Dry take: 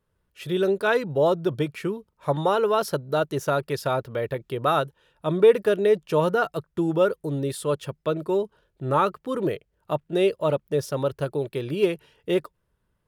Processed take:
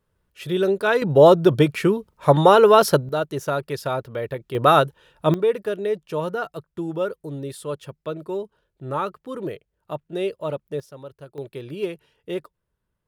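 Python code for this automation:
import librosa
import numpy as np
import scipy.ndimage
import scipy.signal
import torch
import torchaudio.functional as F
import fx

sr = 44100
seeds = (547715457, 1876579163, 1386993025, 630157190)

y = fx.gain(x, sr, db=fx.steps((0.0, 2.0), (1.02, 9.0), (3.09, -0.5), (4.55, 7.0), (5.34, -4.5), (10.8, -14.0), (11.38, -5.5)))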